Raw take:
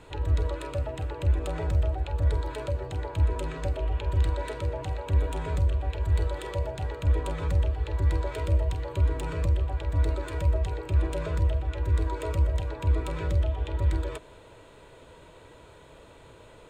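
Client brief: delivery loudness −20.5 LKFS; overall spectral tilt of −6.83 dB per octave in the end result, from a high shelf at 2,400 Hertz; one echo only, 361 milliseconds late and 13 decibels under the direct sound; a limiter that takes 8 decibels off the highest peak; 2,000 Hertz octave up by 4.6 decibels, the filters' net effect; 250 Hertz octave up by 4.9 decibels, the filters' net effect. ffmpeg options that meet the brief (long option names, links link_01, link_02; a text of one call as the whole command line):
ffmpeg -i in.wav -af "equalizer=frequency=250:width_type=o:gain=7.5,equalizer=frequency=2000:width_type=o:gain=8.5,highshelf=frequency=2400:gain=-6,alimiter=limit=-21dB:level=0:latency=1,aecho=1:1:361:0.224,volume=10dB" out.wav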